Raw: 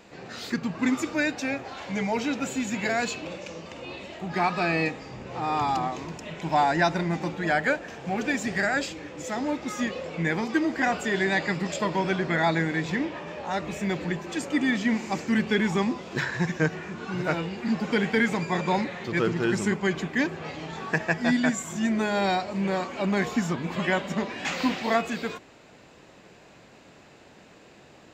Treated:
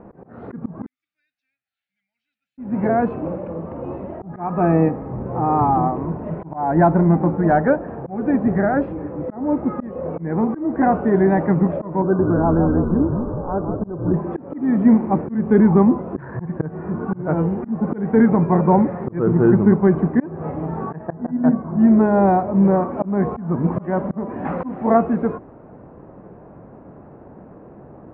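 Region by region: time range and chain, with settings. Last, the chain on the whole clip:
0:00.86–0:02.58: inverse Chebyshev high-pass filter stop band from 1,100 Hz, stop band 70 dB + high-frequency loss of the air 100 metres
0:07.07–0:07.70: running median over 15 samples + parametric band 4,400 Hz +6.5 dB 2.8 octaves
0:12.02–0:14.14: Chebyshev low-pass with heavy ripple 1,600 Hz, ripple 6 dB + echo with shifted repeats 168 ms, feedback 52%, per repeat −80 Hz, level −6.5 dB
0:21.07–0:21.79: low-pass filter 1,400 Hz + mains-hum notches 60/120/180/240/300/360/420/480/540/600 Hz
whole clip: low-pass filter 1,200 Hz 24 dB per octave; low-shelf EQ 440 Hz +7.5 dB; volume swells 281 ms; level +7 dB

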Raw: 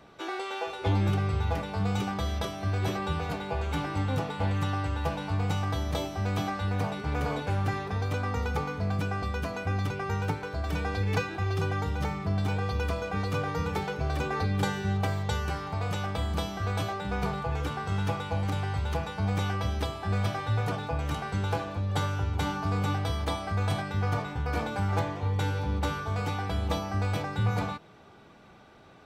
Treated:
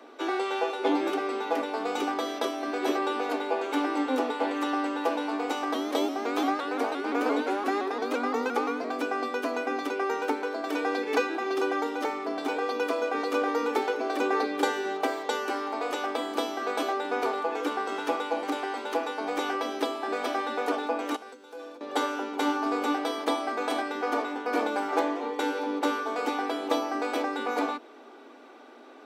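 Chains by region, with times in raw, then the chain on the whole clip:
0:05.74–0:08.90: double-tracking delay 13 ms −12 dB + pitch modulation by a square or saw wave saw up 5.8 Hz, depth 100 cents
0:21.16–0:21.81: bass and treble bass +5 dB, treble +8 dB + downward compressor 12 to 1, threshold −29 dBFS + tuned comb filter 500 Hz, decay 0.19 s, harmonics odd, mix 80%
whole clip: Chebyshev high-pass filter 240 Hz, order 8; tilt shelving filter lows +3.5 dB, about 690 Hz; level +6 dB

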